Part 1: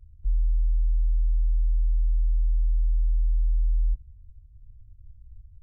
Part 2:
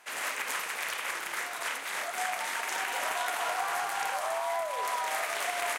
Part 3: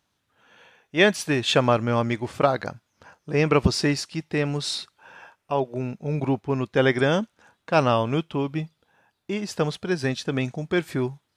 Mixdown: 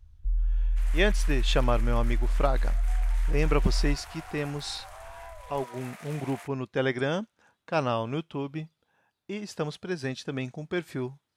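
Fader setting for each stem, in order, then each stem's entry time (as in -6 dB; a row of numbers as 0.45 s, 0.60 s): -3.0 dB, -14.0 dB, -7.0 dB; 0.00 s, 0.70 s, 0.00 s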